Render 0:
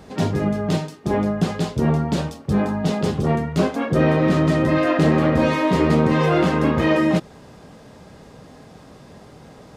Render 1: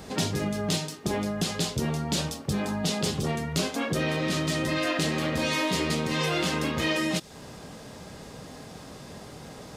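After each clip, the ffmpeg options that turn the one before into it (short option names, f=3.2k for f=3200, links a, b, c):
-filter_complex "[0:a]highshelf=f=2.9k:g=8.5,acrossover=split=2500[a][b];[a]acompressor=threshold=-26dB:ratio=6[c];[c][b]amix=inputs=2:normalize=0"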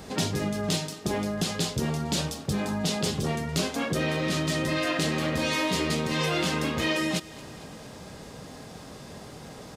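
-af "aecho=1:1:225|450|675|900|1125:0.1|0.059|0.0348|0.0205|0.0121"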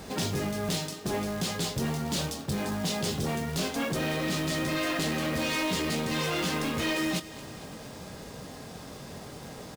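-filter_complex "[0:a]asoftclip=type=tanh:threshold=-24dB,acrusher=bits=3:mode=log:mix=0:aa=0.000001,asplit=2[a][b];[b]adelay=22,volume=-13.5dB[c];[a][c]amix=inputs=2:normalize=0"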